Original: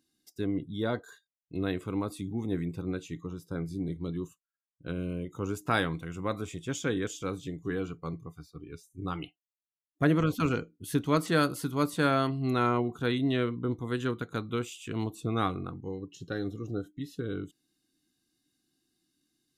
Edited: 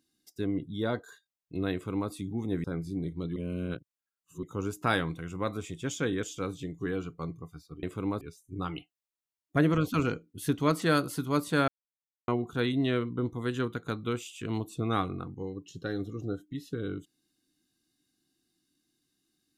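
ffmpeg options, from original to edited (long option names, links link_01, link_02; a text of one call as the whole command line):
ffmpeg -i in.wav -filter_complex "[0:a]asplit=8[link_01][link_02][link_03][link_04][link_05][link_06][link_07][link_08];[link_01]atrim=end=2.642[link_09];[link_02]atrim=start=3.478:end=4.202[link_10];[link_03]atrim=start=4.198:end=5.272,asetpts=PTS-STARTPTS,areverse[link_11];[link_04]atrim=start=5.268:end=8.672[link_12];[link_05]atrim=start=1.728:end=2.112[link_13];[link_06]atrim=start=8.668:end=12.14,asetpts=PTS-STARTPTS,afade=type=out:start_time=3.468:duration=0.004:curve=hsin[link_14];[link_07]atrim=start=12.14:end=12.74,asetpts=PTS-STARTPTS,volume=0[link_15];[link_08]atrim=start=12.74,asetpts=PTS-STARTPTS,afade=type=in:duration=0.004:curve=hsin[link_16];[link_09][link_10]acrossfade=duration=0.004:curve1=hsin:curve2=hsin[link_17];[link_17][link_11]acrossfade=duration=0.004:curve1=hsin:curve2=hsin[link_18];[link_18][link_12]acrossfade=duration=0.004:curve1=hsin:curve2=hsin[link_19];[link_19][link_13]acrossfade=duration=0.004:curve1=hsin:curve2=hsin[link_20];[link_14][link_15][link_16]concat=n=3:v=0:a=1[link_21];[link_20][link_21]acrossfade=duration=0.004:curve1=hsin:curve2=hsin" out.wav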